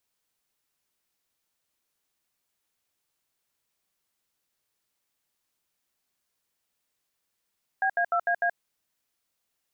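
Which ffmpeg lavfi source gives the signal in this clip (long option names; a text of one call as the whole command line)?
ffmpeg -f lavfi -i "aevalsrc='0.0596*clip(min(mod(t,0.15),0.077-mod(t,0.15))/0.002,0,1)*(eq(floor(t/0.15),0)*(sin(2*PI*770*mod(t,0.15))+sin(2*PI*1633*mod(t,0.15)))+eq(floor(t/0.15),1)*(sin(2*PI*697*mod(t,0.15))+sin(2*PI*1633*mod(t,0.15)))+eq(floor(t/0.15),2)*(sin(2*PI*697*mod(t,0.15))+sin(2*PI*1336*mod(t,0.15)))+eq(floor(t/0.15),3)*(sin(2*PI*697*mod(t,0.15))+sin(2*PI*1633*mod(t,0.15)))+eq(floor(t/0.15),4)*(sin(2*PI*697*mod(t,0.15))+sin(2*PI*1633*mod(t,0.15))))':duration=0.75:sample_rate=44100" out.wav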